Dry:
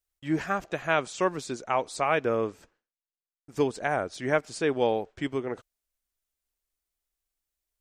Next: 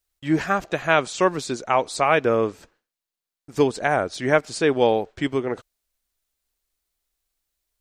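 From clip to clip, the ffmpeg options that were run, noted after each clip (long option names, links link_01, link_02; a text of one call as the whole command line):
ffmpeg -i in.wav -af "equalizer=frequency=4100:width_type=o:width=0.43:gain=3,volume=6.5dB" out.wav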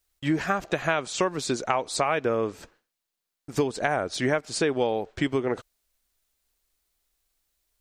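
ffmpeg -i in.wav -af "acompressor=threshold=-25dB:ratio=6,volume=3.5dB" out.wav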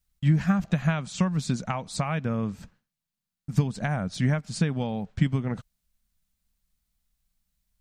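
ffmpeg -i in.wav -af "lowshelf=frequency=260:width_type=q:width=3:gain=11.5,volume=-5.5dB" out.wav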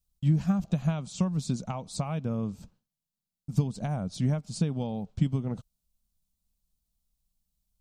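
ffmpeg -i in.wav -af "equalizer=frequency=1800:width_type=o:width=0.97:gain=-15,volume=-2.5dB" out.wav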